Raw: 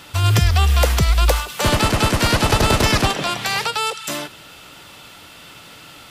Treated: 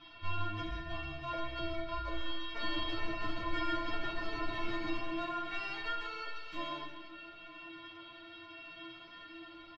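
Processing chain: resonant high shelf 6000 Hz -12.5 dB, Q 1.5; compressor 2:1, threshold -26 dBFS, peak gain reduction 8.5 dB; one-sided clip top -32 dBFS, bottom -14 dBFS; flange 0.49 Hz, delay 0.8 ms, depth 8.7 ms, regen -39%; metallic resonator 330 Hz, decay 0.25 s, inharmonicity 0.008; time stretch by phase-locked vocoder 1.6×; air absorption 290 m; echo 0.133 s -10 dB; reverb RT60 1.2 s, pre-delay 7 ms, DRR 2 dB; gain +9 dB

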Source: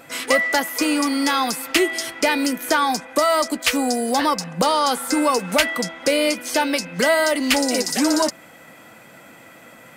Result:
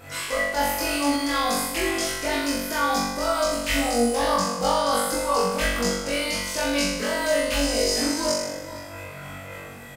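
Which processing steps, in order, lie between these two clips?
resonant low shelf 120 Hz +11.5 dB, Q 1.5; reverse; compressor, threshold -25 dBFS, peak gain reduction 12.5 dB; reverse; outdoor echo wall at 81 m, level -12 dB; chorus voices 6, 0.9 Hz, delay 22 ms, depth 1 ms; on a send: flutter echo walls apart 3.6 m, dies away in 0.93 s; on the sum: ending taper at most 120 dB/s; gain +1 dB

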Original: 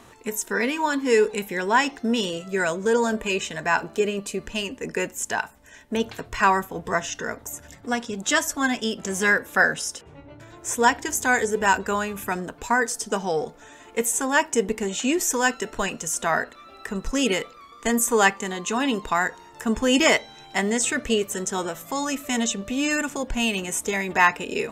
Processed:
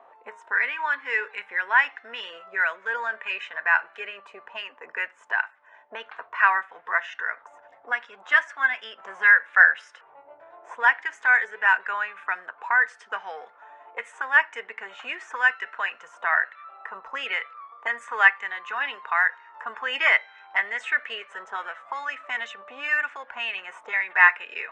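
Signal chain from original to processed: three-band isolator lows -19 dB, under 530 Hz, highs -18 dB, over 3100 Hz; auto-wah 630–1800 Hz, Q 2.1, up, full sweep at -29 dBFS; downsampling 22050 Hz; gain +6.5 dB

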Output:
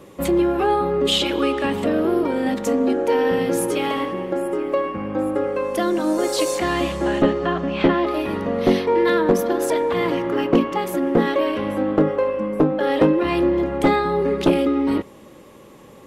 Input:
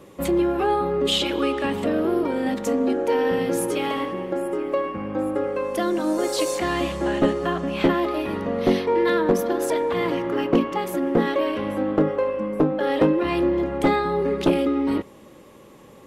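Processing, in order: 7.22–8.07 LPF 4500 Hz 12 dB/oct; gain +2.5 dB

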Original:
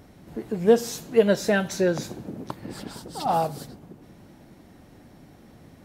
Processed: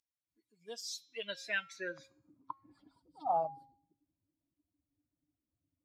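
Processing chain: per-bin expansion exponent 2; band-pass sweep 6300 Hz -> 540 Hz, 0.55–3.11; de-hum 270.7 Hz, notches 27; gain +1 dB

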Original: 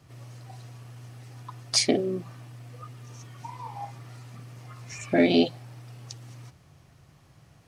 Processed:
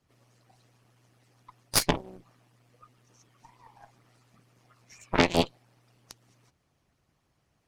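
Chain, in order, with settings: added harmonics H 3 -12 dB, 4 -7 dB, 6 -17 dB, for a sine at -7.5 dBFS; harmonic-percussive split harmonic -13 dB; gain +3 dB

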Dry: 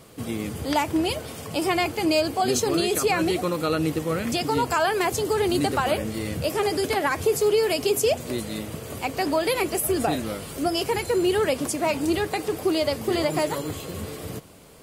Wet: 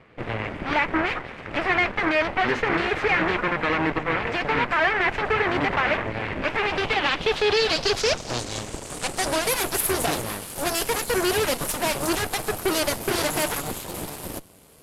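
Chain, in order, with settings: soft clip -13.5 dBFS, distortion -23 dB; added harmonics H 3 -26 dB, 7 -13 dB, 8 -10 dB, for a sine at -14 dBFS; low-pass sweep 2100 Hz -> 12000 Hz, 6.37–9.62; gain -2 dB

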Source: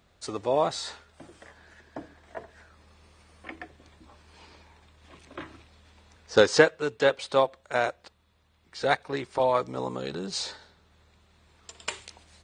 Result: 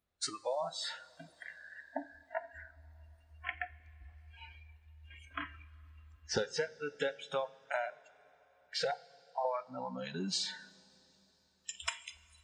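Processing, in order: 8.91–9.45 vocal tract filter a; compressor 8:1, threshold -38 dBFS, peak gain reduction 25 dB; spectral noise reduction 29 dB; two-slope reverb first 0.33 s, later 3.9 s, from -18 dB, DRR 13.5 dB; gain +6 dB

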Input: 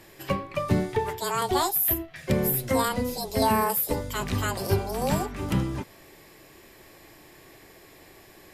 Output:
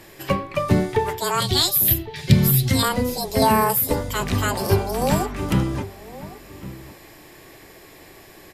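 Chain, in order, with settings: 1.4–2.83 graphic EQ 125/500/1000/4000 Hz +11/-10/-12/+11 dB; outdoor echo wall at 190 m, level -16 dB; gain +5.5 dB

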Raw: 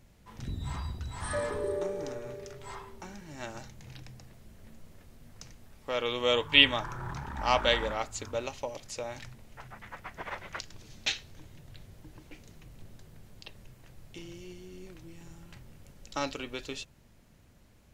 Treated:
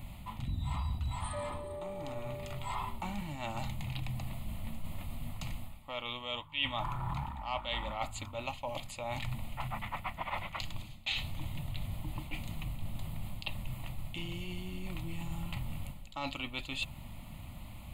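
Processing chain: reverse; compressor 8:1, threshold -47 dBFS, peak gain reduction 31.5 dB; reverse; fixed phaser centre 1600 Hz, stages 6; gain +15.5 dB

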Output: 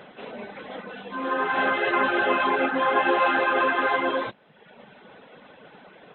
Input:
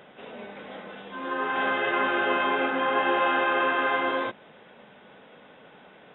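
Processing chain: reverb removal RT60 0.91 s; 0.75–1.39 comb 4.1 ms, depth 36%; gain +5 dB; Nellymoser 22 kbps 11025 Hz

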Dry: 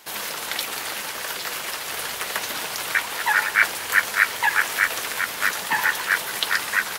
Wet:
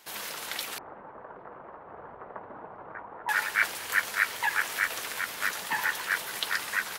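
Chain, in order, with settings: 0.78–3.29 LPF 1100 Hz 24 dB/oct; gain -7.5 dB

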